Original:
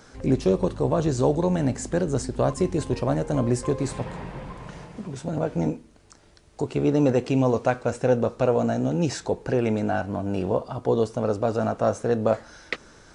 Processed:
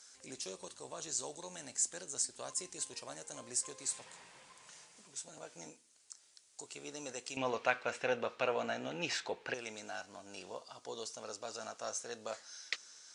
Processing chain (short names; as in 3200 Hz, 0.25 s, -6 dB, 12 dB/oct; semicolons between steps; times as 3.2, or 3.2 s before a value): band-pass 7800 Hz, Q 1.5, from 7.37 s 2600 Hz, from 9.54 s 6300 Hz; gain +3.5 dB